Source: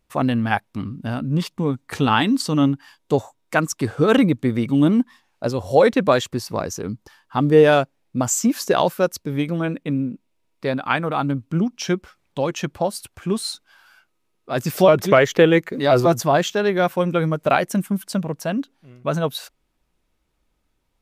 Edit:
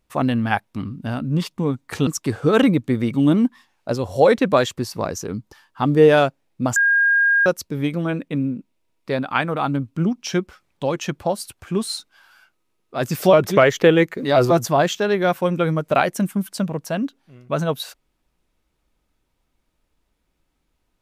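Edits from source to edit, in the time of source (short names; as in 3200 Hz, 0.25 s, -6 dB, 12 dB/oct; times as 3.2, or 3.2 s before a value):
2.07–3.62 cut
8.31–9.01 bleep 1620 Hz -13 dBFS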